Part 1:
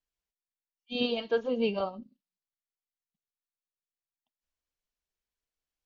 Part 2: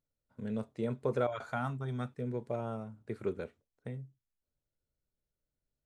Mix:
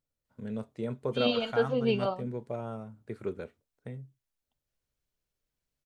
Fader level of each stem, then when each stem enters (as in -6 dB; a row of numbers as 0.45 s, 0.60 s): +1.0 dB, 0.0 dB; 0.25 s, 0.00 s